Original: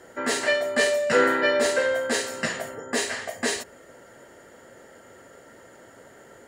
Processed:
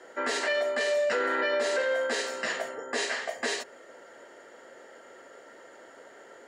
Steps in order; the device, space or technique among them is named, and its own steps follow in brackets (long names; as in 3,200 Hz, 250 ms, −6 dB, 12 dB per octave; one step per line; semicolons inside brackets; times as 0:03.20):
DJ mixer with the lows and highs turned down (three-way crossover with the lows and the highs turned down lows −21 dB, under 280 Hz, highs −15 dB, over 7,100 Hz; brickwall limiter −19.5 dBFS, peak gain reduction 10.5 dB)
0:02.68–0:03.29: low-pass filter 11,000 Hz 24 dB per octave